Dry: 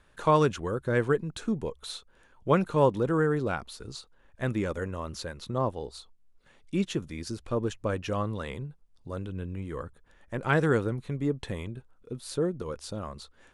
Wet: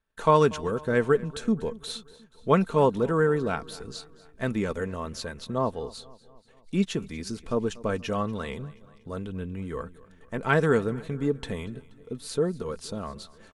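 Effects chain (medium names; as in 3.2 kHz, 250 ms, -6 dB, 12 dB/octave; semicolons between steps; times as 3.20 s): gate -57 dBFS, range -22 dB; comb 4.5 ms, depth 39%; on a send: feedback delay 239 ms, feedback 56%, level -21 dB; on the sum: trim +1.5 dB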